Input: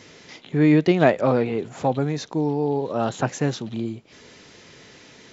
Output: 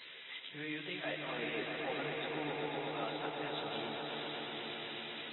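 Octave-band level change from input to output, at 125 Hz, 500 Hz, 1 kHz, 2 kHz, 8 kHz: -25.5 dB, -18.0 dB, -13.5 dB, -8.0 dB, no reading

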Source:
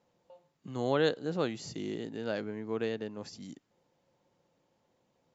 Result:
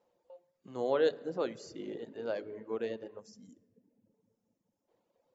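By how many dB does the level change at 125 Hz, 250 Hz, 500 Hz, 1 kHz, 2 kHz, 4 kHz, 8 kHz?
-12.5 dB, -6.0 dB, 0.0 dB, -2.5 dB, -5.5 dB, -7.0 dB, no reading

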